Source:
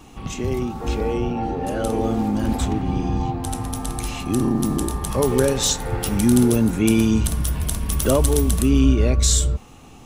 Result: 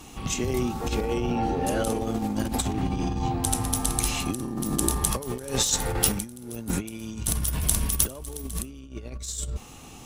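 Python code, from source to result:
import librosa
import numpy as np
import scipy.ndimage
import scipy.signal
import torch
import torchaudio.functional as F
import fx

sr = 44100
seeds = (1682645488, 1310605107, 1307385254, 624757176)

y = fx.cheby_harmonics(x, sr, harmonics=(2,), levels_db=(-14,), full_scale_db=-1.5)
y = fx.over_compress(y, sr, threshold_db=-23.0, ratio=-0.5)
y = fx.high_shelf(y, sr, hz=3400.0, db=9.0)
y = y * 10.0 ** (-5.0 / 20.0)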